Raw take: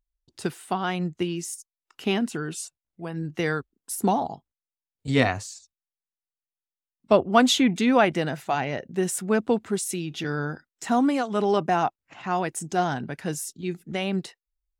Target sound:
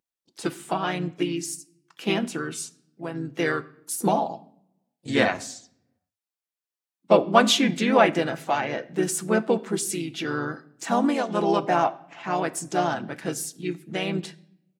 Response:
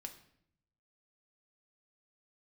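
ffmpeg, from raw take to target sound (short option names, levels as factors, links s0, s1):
-filter_complex "[0:a]highpass=220,asplit=3[s0][s1][s2];[s1]asetrate=37084,aresample=44100,atempo=1.18921,volume=0.501[s3];[s2]asetrate=52444,aresample=44100,atempo=0.840896,volume=0.126[s4];[s0][s3][s4]amix=inputs=3:normalize=0,asplit=2[s5][s6];[1:a]atrim=start_sample=2205,adelay=6[s7];[s6][s7]afir=irnorm=-1:irlink=0,volume=0.631[s8];[s5][s8]amix=inputs=2:normalize=0"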